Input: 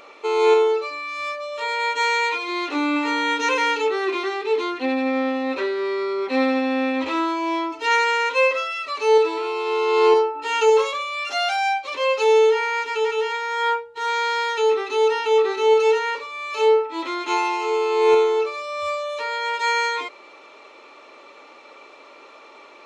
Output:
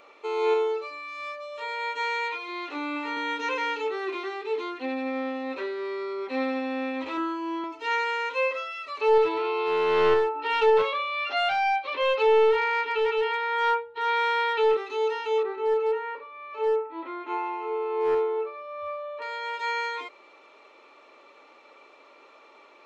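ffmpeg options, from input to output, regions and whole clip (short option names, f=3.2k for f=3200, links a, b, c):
-filter_complex "[0:a]asettb=1/sr,asplit=3[a][b][c];[a]atrim=end=2.284[d];[b]atrim=start=2.28:end=3.17,asetpts=PTS-STARTPTS,afade=t=in:d=0.004:c=qsin,afade=t=out:st=0.886:d=0.004:c=qsin,acrossover=split=5700[e][f];[f]acompressor=threshold=-53dB:ratio=4:attack=1:release=60[g];[e][g]amix=inputs=2:normalize=0,highpass=f=290:p=1[h];[c]atrim=start=3.166[i];[d][h]acrossfade=d=0.004:c1=hsin:c2=qsin[j];[j][i]acrossfade=d=0.004:c1=qsin:c2=hsin,asettb=1/sr,asplit=3[k][l][m];[k]atrim=end=7.174[n];[l]atrim=start=7.17:end=7.64,asetpts=PTS-STARTPTS,afade=t=in:d=0.004:c=qsin,afade=t=out:st=0.466:d=0.004:c=qsin,highshelf=f=3k:g=-10,aecho=1:1:3.7:0.81,atrim=end_sample=20727[o];[m]atrim=start=7.636[p];[n][o]acrossfade=d=0.004:c1=hsin:c2=qsin[q];[q][p]acrossfade=d=0.004:c1=qsin:c2=hsin,asettb=1/sr,asplit=3[r][s][t];[r]atrim=end=9.014[u];[s]atrim=start=9.01:end=14.77,asetpts=PTS-STARTPTS,afade=t=in:d=0.004:c=qsin,afade=t=out:st=5.756:d=0.004:c=qsin,lowpass=f=4.2k:w=0.5412,lowpass=f=4.2k:w=1.3066,aeval=exprs='clip(val(0),-1,0.112)':c=same,acontrast=54[v];[t]atrim=start=14.766[w];[u][v]acrossfade=d=0.004:c1=hsin:c2=qsin[x];[x][w]acrossfade=d=0.004:c1=qsin:c2=hsin,asettb=1/sr,asplit=3[y][z][aa];[y]atrim=end=15.434[ab];[z]atrim=start=15.43:end=19.22,asetpts=PTS-STARTPTS,afade=t=in:d=0.004:c=qsin,afade=t=out:st=3.786:d=0.004:c=qsin,lowpass=1.7k,volume=11.5dB,asoftclip=hard,volume=-11.5dB[ac];[aa]atrim=start=19.216[ad];[ab][ac]acrossfade=d=0.004:c1=hsin:c2=qsin[ae];[ae][ad]acrossfade=d=0.004:c1=qsin:c2=hsin,acrossover=split=5700[af][ag];[ag]acompressor=threshold=-51dB:ratio=4:attack=1:release=60[ah];[af][ah]amix=inputs=2:normalize=0,bass=f=250:g=-2,treble=f=4k:g=-4,volume=-7.5dB"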